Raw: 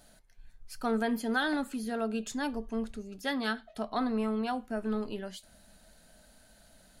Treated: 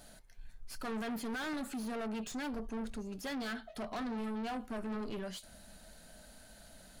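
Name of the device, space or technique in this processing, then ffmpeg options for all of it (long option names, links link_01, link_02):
saturation between pre-emphasis and de-emphasis: -af "highshelf=frequency=4900:gain=10,asoftclip=type=tanh:threshold=-39.5dB,highshelf=frequency=4900:gain=-10,volume=3.5dB"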